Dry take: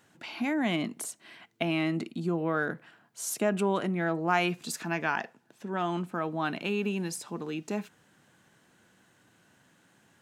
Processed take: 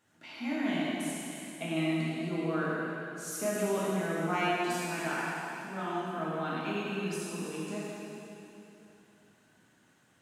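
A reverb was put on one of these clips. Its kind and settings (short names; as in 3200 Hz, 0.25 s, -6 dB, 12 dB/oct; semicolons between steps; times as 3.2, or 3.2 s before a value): plate-style reverb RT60 3 s, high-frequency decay 1×, DRR -8 dB; gain -11 dB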